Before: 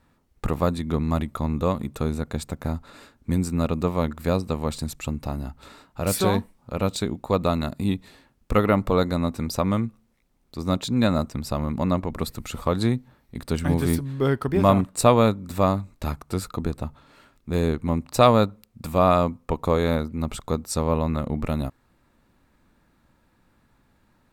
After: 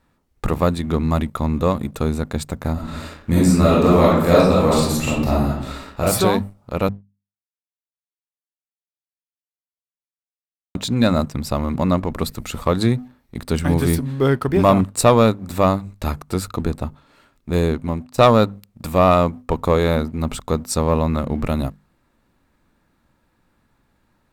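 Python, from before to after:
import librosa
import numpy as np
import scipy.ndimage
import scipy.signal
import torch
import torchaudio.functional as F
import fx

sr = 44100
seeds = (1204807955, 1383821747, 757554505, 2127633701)

y = fx.reverb_throw(x, sr, start_s=2.73, length_s=3.28, rt60_s=0.82, drr_db=-7.0)
y = fx.edit(y, sr, fx.silence(start_s=6.89, length_s=3.86),
    fx.fade_out_to(start_s=17.59, length_s=0.59, floor_db=-11.0), tone=tone)
y = fx.hum_notches(y, sr, base_hz=50, count=5)
y = fx.leveller(y, sr, passes=1)
y = F.gain(torch.from_numpy(y), 1.5).numpy()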